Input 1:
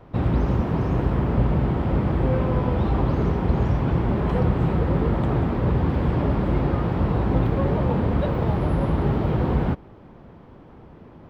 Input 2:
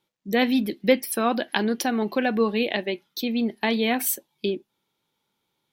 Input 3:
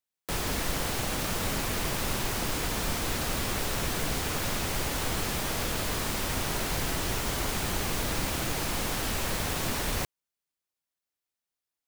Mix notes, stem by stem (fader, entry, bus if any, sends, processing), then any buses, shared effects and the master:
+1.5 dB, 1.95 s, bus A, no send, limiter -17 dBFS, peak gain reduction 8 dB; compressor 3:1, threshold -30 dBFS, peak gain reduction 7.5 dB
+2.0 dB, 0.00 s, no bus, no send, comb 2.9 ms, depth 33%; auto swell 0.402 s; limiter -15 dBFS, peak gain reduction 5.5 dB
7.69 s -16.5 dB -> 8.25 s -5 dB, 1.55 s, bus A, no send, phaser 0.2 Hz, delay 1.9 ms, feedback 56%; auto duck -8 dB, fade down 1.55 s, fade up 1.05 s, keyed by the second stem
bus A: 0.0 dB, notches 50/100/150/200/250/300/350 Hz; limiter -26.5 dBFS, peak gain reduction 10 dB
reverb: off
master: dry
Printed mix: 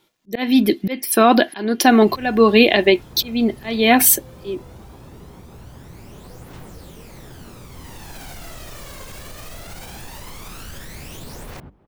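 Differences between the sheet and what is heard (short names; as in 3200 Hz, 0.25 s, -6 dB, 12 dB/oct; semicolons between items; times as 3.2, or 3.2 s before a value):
stem 1 +1.5 dB -> -9.5 dB; stem 2 +2.0 dB -> +13.5 dB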